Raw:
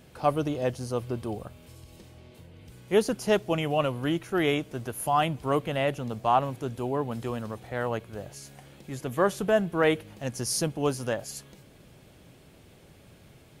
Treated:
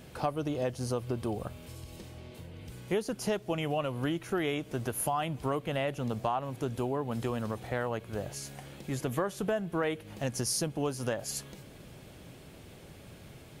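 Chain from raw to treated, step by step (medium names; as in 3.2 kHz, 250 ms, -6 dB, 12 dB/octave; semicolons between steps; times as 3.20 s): compression 6:1, threshold -32 dBFS, peak gain reduction 14.5 dB; trim +3.5 dB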